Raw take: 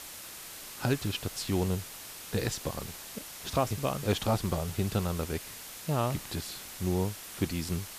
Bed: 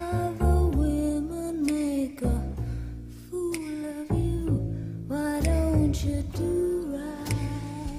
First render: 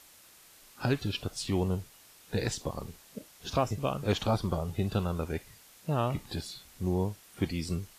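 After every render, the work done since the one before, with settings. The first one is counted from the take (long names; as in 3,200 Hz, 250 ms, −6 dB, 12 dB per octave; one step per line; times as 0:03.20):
noise reduction from a noise print 12 dB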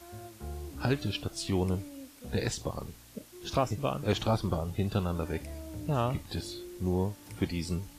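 mix in bed −18.5 dB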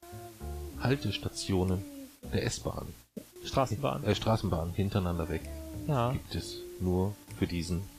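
noise gate with hold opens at −40 dBFS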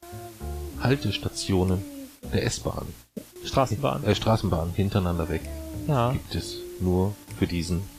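level +6 dB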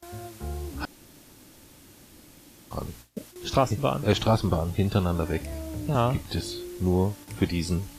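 0:00.85–0:02.71: fill with room tone
0:05.52–0:05.95: multiband upward and downward compressor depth 40%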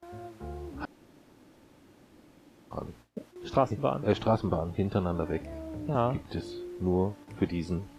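low-pass filter 1,000 Hz 6 dB per octave
low-shelf EQ 140 Hz −11 dB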